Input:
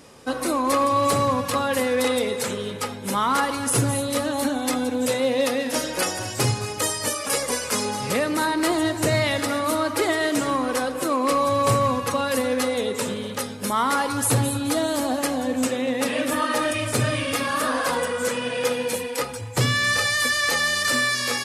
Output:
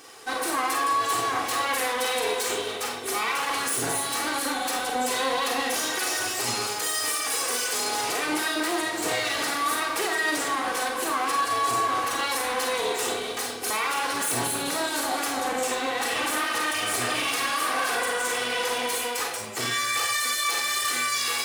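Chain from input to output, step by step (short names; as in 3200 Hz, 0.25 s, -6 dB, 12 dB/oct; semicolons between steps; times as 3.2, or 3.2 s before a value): minimum comb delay 2.6 ms; HPF 640 Hz 6 dB/oct; limiter -23 dBFS, peak gain reduction 11 dB; Schroeder reverb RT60 0.3 s, combs from 33 ms, DRR 2.5 dB; gain +4 dB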